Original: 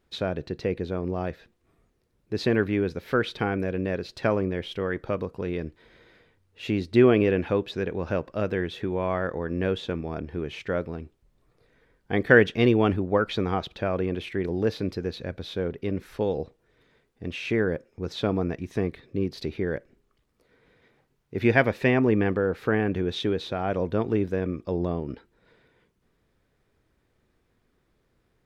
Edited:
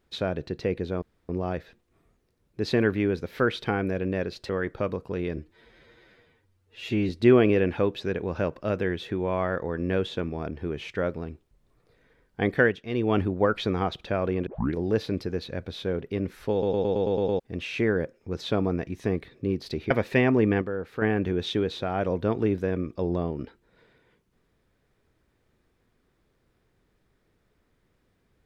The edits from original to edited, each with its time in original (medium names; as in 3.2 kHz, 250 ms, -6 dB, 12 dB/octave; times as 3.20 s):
1.02 s: insert room tone 0.27 s
4.22–4.78 s: delete
5.66–6.81 s: stretch 1.5×
12.17–12.93 s: dip -12 dB, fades 0.32 s
14.18 s: tape start 0.28 s
16.23 s: stutter in place 0.11 s, 8 plays
19.62–21.60 s: delete
22.31–22.71 s: gain -6.5 dB